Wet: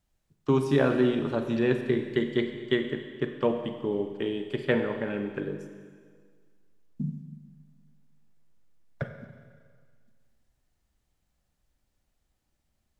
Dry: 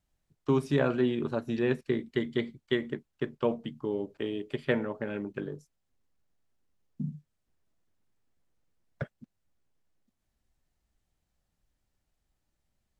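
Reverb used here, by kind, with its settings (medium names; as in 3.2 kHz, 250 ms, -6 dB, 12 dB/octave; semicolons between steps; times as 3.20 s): Schroeder reverb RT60 1.8 s, combs from 31 ms, DRR 6.5 dB; trim +2.5 dB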